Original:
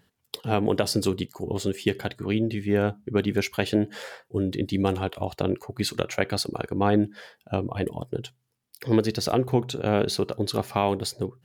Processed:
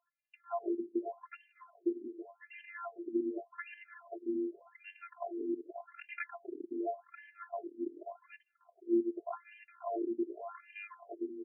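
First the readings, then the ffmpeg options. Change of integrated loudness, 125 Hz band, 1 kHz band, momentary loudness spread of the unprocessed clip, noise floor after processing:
-13.0 dB, under -40 dB, -13.5 dB, 8 LU, -77 dBFS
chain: -af "afftfilt=real='hypot(re,im)*cos(PI*b)':imag='0':win_size=512:overlap=0.75,aecho=1:1:536|1072|1608:0.562|0.09|0.0144,afftfilt=real='re*between(b*sr/1024,290*pow(2200/290,0.5+0.5*sin(2*PI*0.86*pts/sr))/1.41,290*pow(2200/290,0.5+0.5*sin(2*PI*0.86*pts/sr))*1.41)':imag='im*between(b*sr/1024,290*pow(2200/290,0.5+0.5*sin(2*PI*0.86*pts/sr))/1.41,290*pow(2200/290,0.5+0.5*sin(2*PI*0.86*pts/sr))*1.41)':win_size=1024:overlap=0.75,volume=0.531"

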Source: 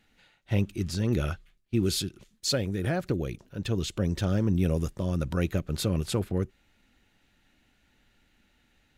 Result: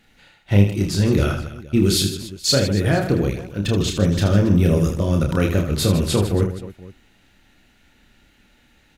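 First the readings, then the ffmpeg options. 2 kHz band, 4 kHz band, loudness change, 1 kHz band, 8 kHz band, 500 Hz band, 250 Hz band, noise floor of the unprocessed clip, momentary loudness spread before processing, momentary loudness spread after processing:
+10.0 dB, +10.5 dB, +10.0 dB, +10.0 dB, +10.0 dB, +10.0 dB, +10.0 dB, -68 dBFS, 6 LU, 7 LU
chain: -af "aecho=1:1:30|78|154.8|277.7|474.3:0.631|0.398|0.251|0.158|0.1,volume=2.51"

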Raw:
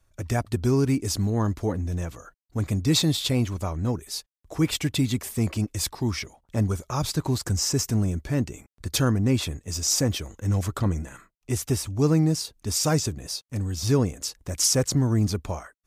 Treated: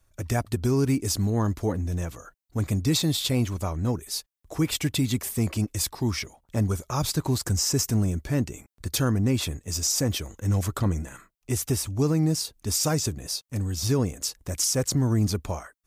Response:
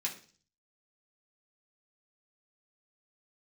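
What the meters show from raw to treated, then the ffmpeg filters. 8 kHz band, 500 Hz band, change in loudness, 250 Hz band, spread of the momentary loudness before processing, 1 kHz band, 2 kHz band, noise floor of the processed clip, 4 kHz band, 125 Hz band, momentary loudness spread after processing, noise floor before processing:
0.0 dB, -1.5 dB, -1.0 dB, -1.0 dB, 10 LU, -0.5 dB, -1.0 dB, -71 dBFS, -1.0 dB, -1.0 dB, 8 LU, -72 dBFS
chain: -af "highshelf=f=10000:g=7,alimiter=limit=0.188:level=0:latency=1:release=107"

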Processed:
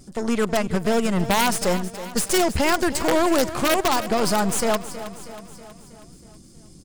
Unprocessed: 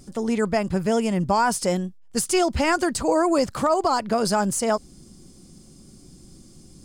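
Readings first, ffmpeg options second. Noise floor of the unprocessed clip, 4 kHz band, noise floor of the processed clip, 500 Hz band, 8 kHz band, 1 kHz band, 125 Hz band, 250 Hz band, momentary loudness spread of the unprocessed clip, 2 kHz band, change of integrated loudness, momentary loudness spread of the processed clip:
-49 dBFS, +5.0 dB, -47 dBFS, +0.5 dB, +2.0 dB, 0.0 dB, +0.5 dB, +0.5 dB, 5 LU, +3.0 dB, +1.0 dB, 13 LU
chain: -af "aeval=exprs='0.299*(cos(1*acos(clip(val(0)/0.299,-1,1)))-cos(1*PI/2))+0.0133*(cos(4*acos(clip(val(0)/0.299,-1,1)))-cos(4*PI/2))+0.0299*(cos(6*acos(clip(val(0)/0.299,-1,1)))-cos(6*PI/2))+0.0531*(cos(8*acos(clip(val(0)/0.299,-1,1)))-cos(8*PI/2))':c=same,aeval=exprs='(mod(4.22*val(0)+1,2)-1)/4.22':c=same,aecho=1:1:320|640|960|1280|1600|1920:0.211|0.118|0.0663|0.0371|0.0208|0.0116"

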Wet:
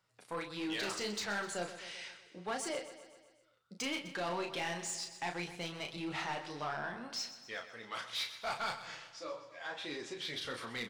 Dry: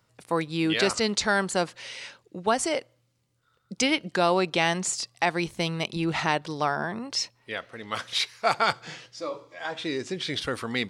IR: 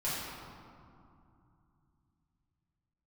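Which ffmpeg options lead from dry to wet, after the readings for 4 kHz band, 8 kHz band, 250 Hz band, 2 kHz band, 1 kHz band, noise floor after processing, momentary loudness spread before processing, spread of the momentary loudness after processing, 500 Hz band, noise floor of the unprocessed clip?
-11.0 dB, -11.0 dB, -14.0 dB, -11.0 dB, -13.0 dB, -68 dBFS, 12 LU, 8 LU, -13.5 dB, -70 dBFS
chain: -filter_complex "[0:a]flanger=delay=5.1:depth=7.2:regen=-32:speed=1.5:shape=triangular,asoftclip=type=tanh:threshold=0.0631,asplit=2[s0][s1];[s1]highpass=f=720:p=1,volume=2.24,asoftclip=type=tanh:threshold=0.0631[s2];[s0][s2]amix=inputs=2:normalize=0,lowpass=f=7800:p=1,volume=0.501,asplit=2[s3][s4];[s4]adelay=34,volume=0.501[s5];[s3][s5]amix=inputs=2:normalize=0,aecho=1:1:127|254|381|508|635|762:0.224|0.13|0.0753|0.0437|0.0253|0.0147,volume=0.422"

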